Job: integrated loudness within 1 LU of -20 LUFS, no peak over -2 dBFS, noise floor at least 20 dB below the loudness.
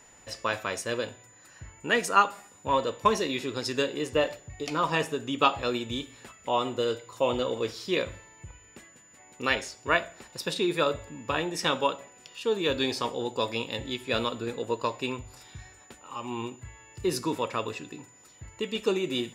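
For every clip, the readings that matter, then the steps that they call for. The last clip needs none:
steady tone 7000 Hz; tone level -55 dBFS; loudness -29.0 LUFS; peak -6.5 dBFS; loudness target -20.0 LUFS
-> notch 7000 Hz, Q 30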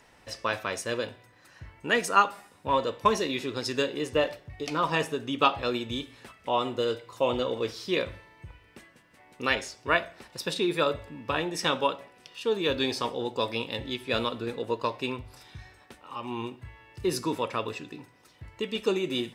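steady tone none; loudness -29.0 LUFS; peak -6.5 dBFS; loudness target -20.0 LUFS
-> gain +9 dB; limiter -2 dBFS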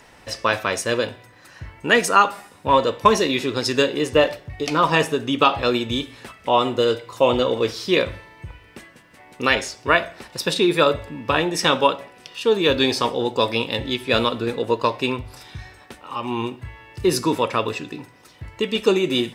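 loudness -20.5 LUFS; peak -2.0 dBFS; noise floor -49 dBFS

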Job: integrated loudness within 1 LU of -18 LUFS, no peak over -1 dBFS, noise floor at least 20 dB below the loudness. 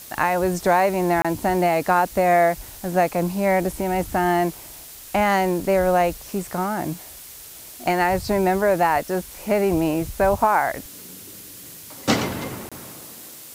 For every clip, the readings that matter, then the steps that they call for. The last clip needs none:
dropouts 2; longest dropout 26 ms; noise floor -41 dBFS; noise floor target -42 dBFS; loudness -21.5 LUFS; peak -5.0 dBFS; loudness target -18.0 LUFS
-> interpolate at 1.22/12.69, 26 ms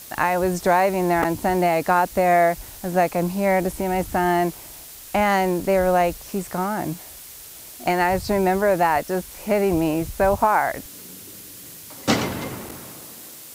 dropouts 0; noise floor -41 dBFS; noise floor target -42 dBFS
-> noise print and reduce 6 dB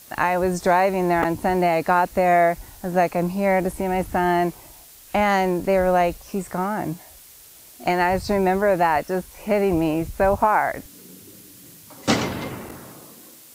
noise floor -47 dBFS; loudness -21.5 LUFS; peak -5.0 dBFS; loudness target -18.0 LUFS
-> gain +3.5 dB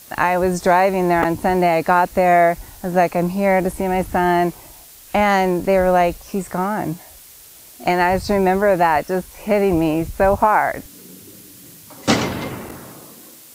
loudness -18.0 LUFS; peak -1.5 dBFS; noise floor -43 dBFS

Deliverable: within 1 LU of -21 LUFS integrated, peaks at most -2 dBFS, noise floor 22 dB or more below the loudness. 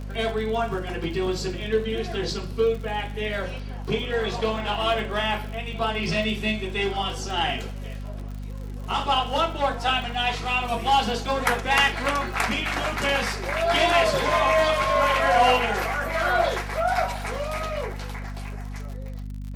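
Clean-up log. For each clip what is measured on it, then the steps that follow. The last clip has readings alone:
ticks 59/s; hum 50 Hz; harmonics up to 250 Hz; hum level -31 dBFS; loudness -24.0 LUFS; peak -8.5 dBFS; loudness target -21.0 LUFS
-> de-click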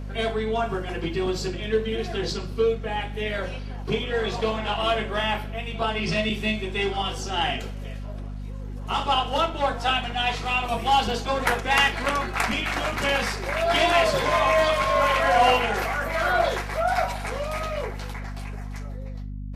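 ticks 0.20/s; hum 50 Hz; harmonics up to 250 Hz; hum level -31 dBFS
-> de-hum 50 Hz, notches 5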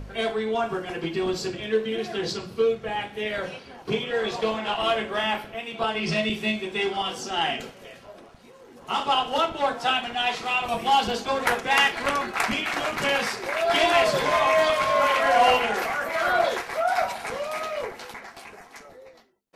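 hum none; loudness -24.5 LUFS; peak -7.0 dBFS; loudness target -21.0 LUFS
-> gain +3.5 dB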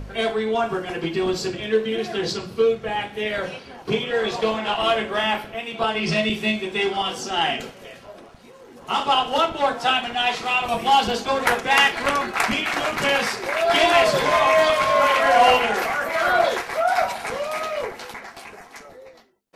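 loudness -21.0 LUFS; peak -3.5 dBFS; noise floor -45 dBFS

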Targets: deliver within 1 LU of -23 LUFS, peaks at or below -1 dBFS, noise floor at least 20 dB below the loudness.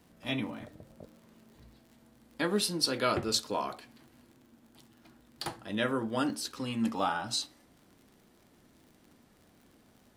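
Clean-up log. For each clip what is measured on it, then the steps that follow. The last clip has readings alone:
ticks 53/s; loudness -32.0 LUFS; peak -13.0 dBFS; loudness target -23.0 LUFS
-> de-click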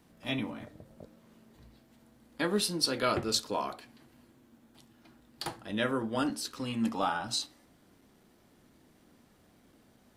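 ticks 0.098/s; loudness -32.5 LUFS; peak -13.0 dBFS; loudness target -23.0 LUFS
-> gain +9.5 dB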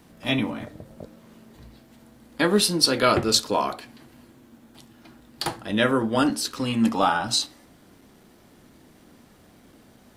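loudness -23.0 LUFS; peak -3.5 dBFS; noise floor -54 dBFS

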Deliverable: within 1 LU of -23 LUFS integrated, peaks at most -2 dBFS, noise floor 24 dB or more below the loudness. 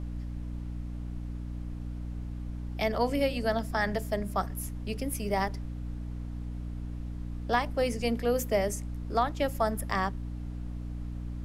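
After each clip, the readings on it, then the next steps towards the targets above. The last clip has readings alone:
hum 60 Hz; harmonics up to 300 Hz; hum level -34 dBFS; noise floor -38 dBFS; noise floor target -57 dBFS; loudness -32.5 LUFS; peak -14.5 dBFS; loudness target -23.0 LUFS
-> notches 60/120/180/240/300 Hz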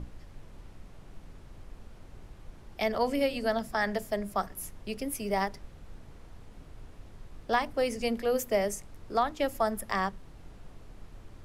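hum none; noise floor -51 dBFS; noise floor target -55 dBFS
-> noise print and reduce 6 dB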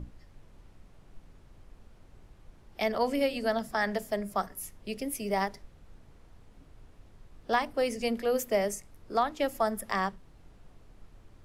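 noise floor -57 dBFS; loudness -31.0 LUFS; peak -15.0 dBFS; loudness target -23.0 LUFS
-> gain +8 dB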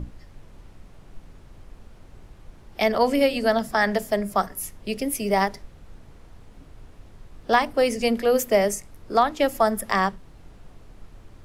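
loudness -23.0 LUFS; peak -7.0 dBFS; noise floor -49 dBFS

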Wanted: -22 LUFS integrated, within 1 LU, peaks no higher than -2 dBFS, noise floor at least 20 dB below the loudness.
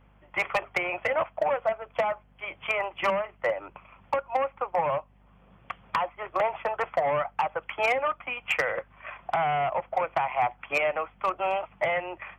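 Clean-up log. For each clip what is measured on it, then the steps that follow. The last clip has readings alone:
clipped 0.2%; flat tops at -17.5 dBFS; hum 50 Hz; harmonics up to 250 Hz; hum level -58 dBFS; loudness -28.5 LUFS; peak -17.5 dBFS; loudness target -22.0 LUFS
-> clip repair -17.5 dBFS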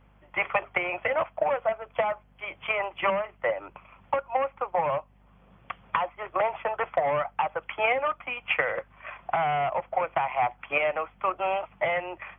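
clipped 0.0%; hum 50 Hz; harmonics up to 250 Hz; hum level -58 dBFS
-> de-hum 50 Hz, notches 5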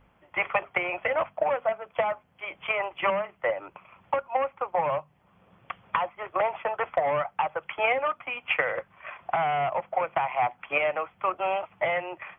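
hum none; loudness -28.5 LUFS; peak -10.5 dBFS; loudness target -22.0 LUFS
-> gain +6.5 dB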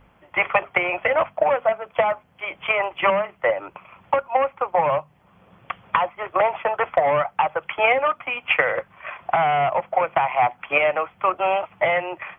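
loudness -22.0 LUFS; peak -4.0 dBFS; noise floor -57 dBFS

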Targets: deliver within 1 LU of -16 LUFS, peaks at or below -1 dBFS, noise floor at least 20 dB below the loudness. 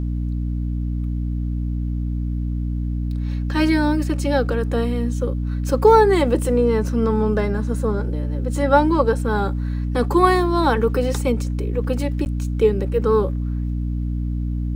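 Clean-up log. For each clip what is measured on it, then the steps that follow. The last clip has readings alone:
dropouts 1; longest dropout 9.7 ms; hum 60 Hz; harmonics up to 300 Hz; hum level -21 dBFS; loudness -20.5 LUFS; peak -1.5 dBFS; loudness target -16.0 LUFS
-> interpolate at 12.25, 9.7 ms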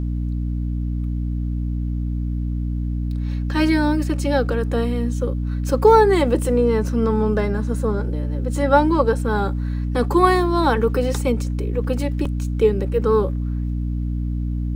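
dropouts 0; hum 60 Hz; harmonics up to 300 Hz; hum level -21 dBFS
-> de-hum 60 Hz, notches 5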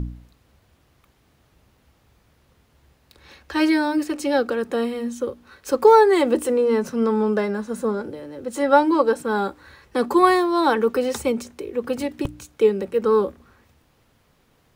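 hum none; loudness -21.0 LUFS; peak -2.0 dBFS; loudness target -16.0 LUFS
-> gain +5 dB; limiter -1 dBFS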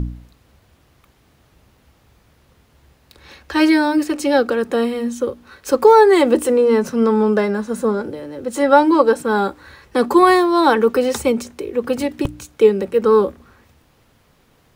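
loudness -16.5 LUFS; peak -1.0 dBFS; noise floor -57 dBFS

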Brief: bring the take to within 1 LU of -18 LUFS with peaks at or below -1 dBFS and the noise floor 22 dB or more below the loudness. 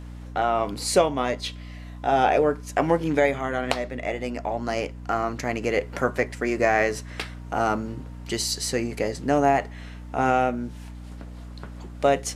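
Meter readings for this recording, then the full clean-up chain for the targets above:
hum 60 Hz; harmonics up to 300 Hz; hum level -36 dBFS; loudness -25.0 LUFS; peak -5.5 dBFS; loudness target -18.0 LUFS
-> de-hum 60 Hz, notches 5; gain +7 dB; limiter -1 dBFS

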